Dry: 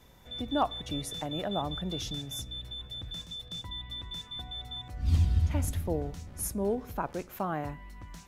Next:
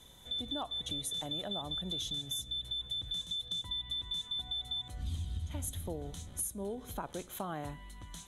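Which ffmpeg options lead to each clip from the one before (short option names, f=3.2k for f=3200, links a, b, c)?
-af "superequalizer=13b=3.55:15b=2.82:16b=3.98,acompressor=threshold=-32dB:ratio=6,volume=-3dB"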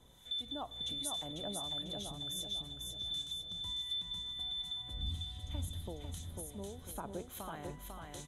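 -filter_complex "[0:a]acrossover=split=1300[a][b];[a]aeval=exprs='val(0)*(1-0.7/2+0.7/2*cos(2*PI*1.4*n/s))':c=same[c];[b]aeval=exprs='val(0)*(1-0.7/2-0.7/2*cos(2*PI*1.4*n/s))':c=same[d];[c][d]amix=inputs=2:normalize=0,asplit=2[e][f];[f]aecho=0:1:497|994|1491|1988|2485:0.631|0.252|0.101|0.0404|0.0162[g];[e][g]amix=inputs=2:normalize=0,volume=-1dB"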